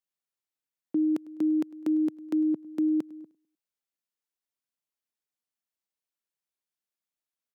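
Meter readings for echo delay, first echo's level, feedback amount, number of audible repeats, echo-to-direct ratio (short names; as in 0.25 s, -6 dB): 0.102 s, -22.0 dB, 40%, 2, -21.5 dB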